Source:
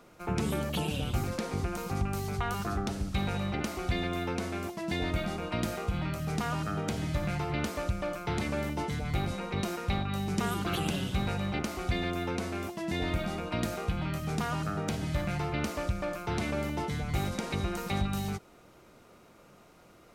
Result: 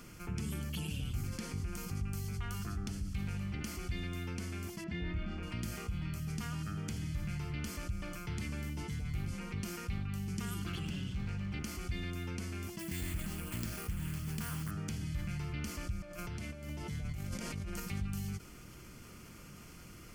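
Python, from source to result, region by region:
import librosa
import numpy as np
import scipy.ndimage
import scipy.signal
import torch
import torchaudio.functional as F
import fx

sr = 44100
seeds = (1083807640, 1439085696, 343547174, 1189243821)

y = fx.chain(x, sr, fx.lowpass(hz=2500.0, slope=12),
    fx.doubler(ms=29.0, db=-2.5), at=(4.84, 5.43))
y = fx.chain(y, sr, fx.peak_eq(hz=12000.0, db=-14.5, octaves=1.1),
    fx.clip_hard(threshold_db=-26.0), at=(10.72, 11.52))
y = fx.chain(y, sr, fx.resample_bad(factor=4, down='none', up='hold'),
    fx.high_shelf(hz=10000.0, db=9.0),
    fx.doppler_dist(depth_ms=0.57), at=(12.79, 14.71))
y = fx.chain(y, sr, fx.peak_eq(hz=610.0, db=13.5, octaves=0.21),
    fx.over_compress(threshold_db=-36.0, ratio=-1.0), at=(16.02, 17.8))
y = fx.tone_stack(y, sr, knobs='6-0-2')
y = fx.notch(y, sr, hz=3800.0, q=5.3)
y = fx.env_flatten(y, sr, amount_pct=50)
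y = y * 10.0 ** (5.0 / 20.0)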